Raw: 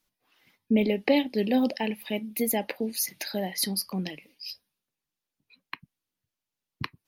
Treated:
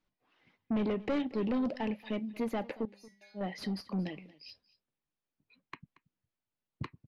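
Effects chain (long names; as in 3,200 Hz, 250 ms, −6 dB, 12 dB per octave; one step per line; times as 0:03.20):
0:02.85–0:03.41: stiff-string resonator 200 Hz, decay 0.58 s, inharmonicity 0.002
soft clipping −26.5 dBFS, distortion −7 dB
head-to-tape spacing loss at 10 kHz 25 dB
single-tap delay 230 ms −20 dB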